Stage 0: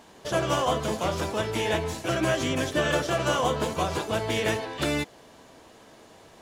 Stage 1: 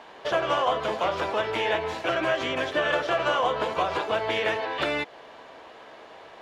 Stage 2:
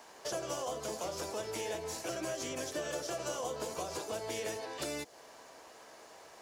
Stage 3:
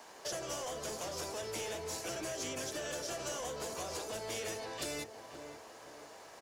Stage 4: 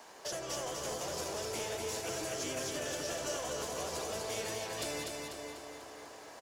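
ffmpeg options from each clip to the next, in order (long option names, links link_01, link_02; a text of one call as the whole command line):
ffmpeg -i in.wav -filter_complex "[0:a]acompressor=threshold=-29dB:ratio=2.5,acrossover=split=420 3800:gain=0.178 1 0.0794[link_01][link_02][link_03];[link_01][link_02][link_03]amix=inputs=3:normalize=0,volume=8dB" out.wav
ffmpeg -i in.wav -filter_complex "[0:a]acrossover=split=110|610|3700[link_01][link_02][link_03][link_04];[link_03]acompressor=threshold=-38dB:ratio=5[link_05];[link_01][link_02][link_05][link_04]amix=inputs=4:normalize=0,aexciter=amount=10.2:drive=2.7:freq=5000,volume=-8.5dB" out.wav
ffmpeg -i in.wav -filter_complex "[0:a]asplit=2[link_01][link_02];[link_02]adelay=522,lowpass=frequency=1900:poles=1,volume=-11dB,asplit=2[link_03][link_04];[link_04]adelay=522,lowpass=frequency=1900:poles=1,volume=0.42,asplit=2[link_05][link_06];[link_06]adelay=522,lowpass=frequency=1900:poles=1,volume=0.42,asplit=2[link_07][link_08];[link_08]adelay=522,lowpass=frequency=1900:poles=1,volume=0.42[link_09];[link_01][link_03][link_05][link_07][link_09]amix=inputs=5:normalize=0,acrossover=split=110|1900[link_10][link_11][link_12];[link_11]asoftclip=type=tanh:threshold=-39dB[link_13];[link_10][link_13][link_12]amix=inputs=3:normalize=0,volume=1dB" out.wav
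ffmpeg -i in.wav -af "aecho=1:1:246|492|738|984|1230|1476|1722:0.668|0.348|0.181|0.094|0.0489|0.0254|0.0132" out.wav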